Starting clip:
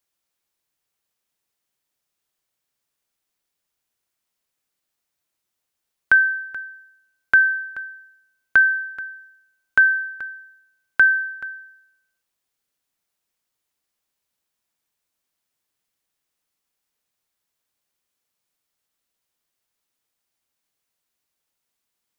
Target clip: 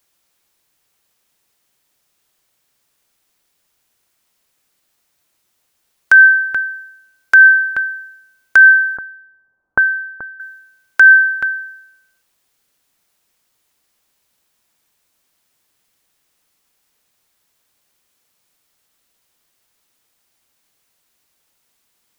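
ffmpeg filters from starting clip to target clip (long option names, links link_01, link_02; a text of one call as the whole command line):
ffmpeg -i in.wav -filter_complex "[0:a]asettb=1/sr,asplit=3[link_01][link_02][link_03];[link_01]atrim=end=8.974[link_04];[link_02]atrim=start=8.97:end=10.4,asetpts=PTS-STARTPTS,afade=type=in:duration=0.004:curve=qsin,afade=type=out:start_time=1.426:duration=0.004:curve=qsin,lowpass=frequency=1100:width=0.5412,lowpass=frequency=1100:width=1.3066[link_05];[link_03]atrim=start=10.396[link_06];[link_04][link_05]acrossfade=duration=0.004:curve1=hsin:curve2=qsin[link_07];[link_07][link_06]acrossfade=duration=0.004:curve1=qsin:curve2=hsin,apsyclip=15.5dB,volume=-2dB" out.wav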